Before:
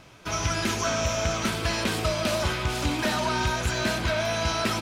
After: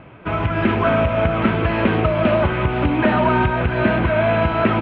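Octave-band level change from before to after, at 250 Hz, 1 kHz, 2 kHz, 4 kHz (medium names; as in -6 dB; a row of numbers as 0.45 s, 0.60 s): +11.5 dB, +8.5 dB, +6.0 dB, -4.5 dB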